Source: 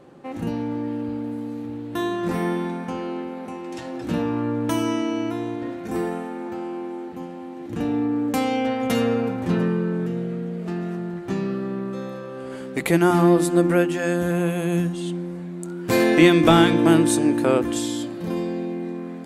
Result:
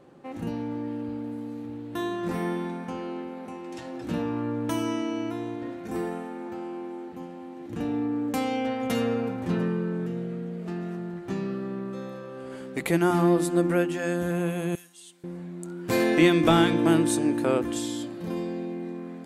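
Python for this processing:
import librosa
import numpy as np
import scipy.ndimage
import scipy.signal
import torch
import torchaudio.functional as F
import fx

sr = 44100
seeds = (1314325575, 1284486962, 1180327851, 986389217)

y = fx.differentiator(x, sr, at=(14.75, 15.24))
y = y * librosa.db_to_amplitude(-5.0)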